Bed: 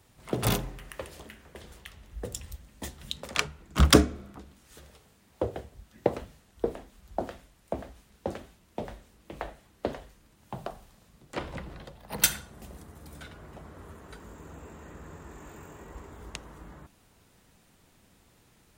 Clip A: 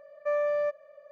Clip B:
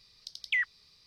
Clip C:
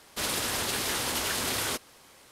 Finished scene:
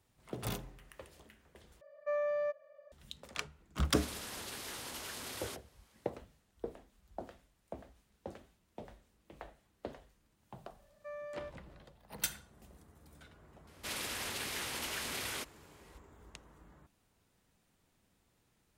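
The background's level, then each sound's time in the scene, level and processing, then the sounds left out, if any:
bed -12.5 dB
1.81 s: replace with A -6.5 dB
3.79 s: add C -14.5 dB
10.79 s: add A -16.5 dB + tilt EQ +2 dB/octave
13.67 s: add C -11 dB + peaking EQ 2.3 kHz +5 dB 0.92 oct
not used: B

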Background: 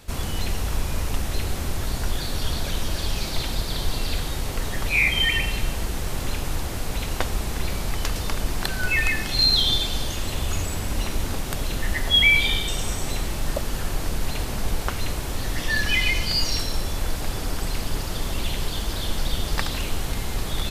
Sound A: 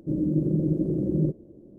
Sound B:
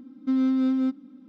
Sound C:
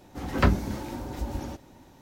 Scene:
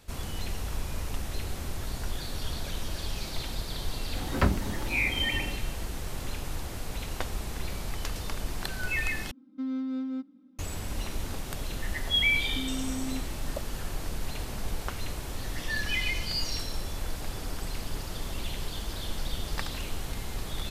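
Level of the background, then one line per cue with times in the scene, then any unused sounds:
background -8 dB
3.99 s: add C -3.5 dB
9.31 s: replace with B -9.5 dB
12.29 s: add B -4.5 dB + compression, threshold -29 dBFS
not used: A

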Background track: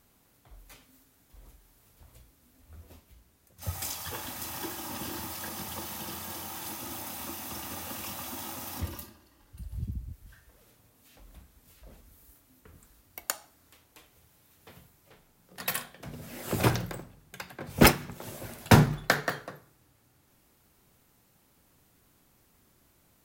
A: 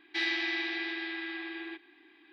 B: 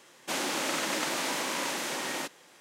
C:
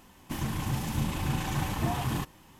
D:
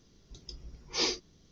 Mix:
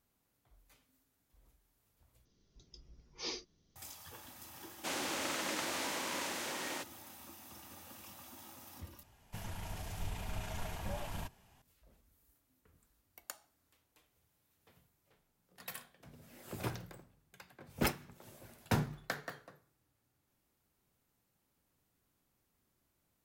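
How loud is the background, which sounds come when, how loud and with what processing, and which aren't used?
background track -14.5 dB
2.25 s: replace with D -11.5 dB
4.56 s: add B -7 dB
9.03 s: replace with C -10 dB + frequency shift -130 Hz
not used: A

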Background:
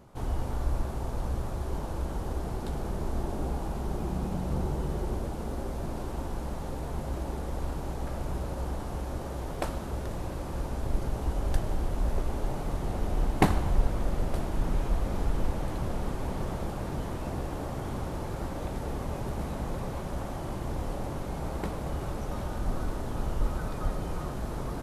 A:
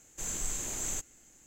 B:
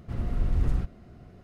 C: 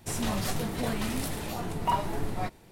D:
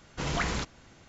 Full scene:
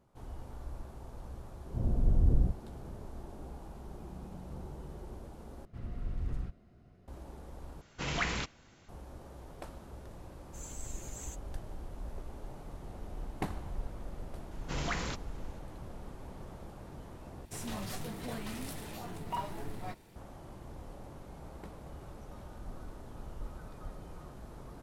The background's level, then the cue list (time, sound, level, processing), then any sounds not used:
background -14 dB
1.66 s: add B -0.5 dB + steep low-pass 690 Hz
5.65 s: replace with B -11 dB
7.81 s: replace with D -5 dB + dynamic bell 2.5 kHz, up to +6 dB, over -47 dBFS, Q 1.3
10.35 s: add A -8.5 dB + expander on every frequency bin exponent 2
14.51 s: add D -5.5 dB
17.45 s: replace with C -10.5 dB + companding laws mixed up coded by mu

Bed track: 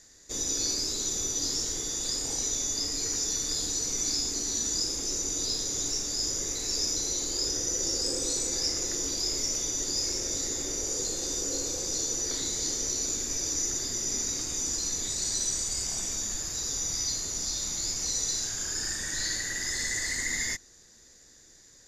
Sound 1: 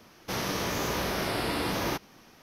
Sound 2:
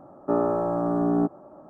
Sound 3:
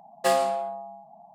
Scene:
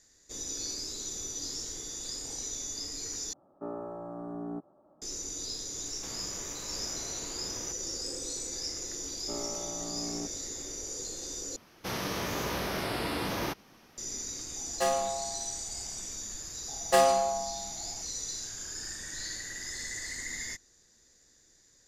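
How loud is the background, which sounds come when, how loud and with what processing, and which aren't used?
bed track -7.5 dB
3.33 s: replace with 2 -15.5 dB
5.75 s: add 1 -3.5 dB + compression, threshold -41 dBFS
9.00 s: add 2 -16.5 dB
11.56 s: replace with 1 -3 dB
14.56 s: add 3 -6 dB
16.68 s: add 3

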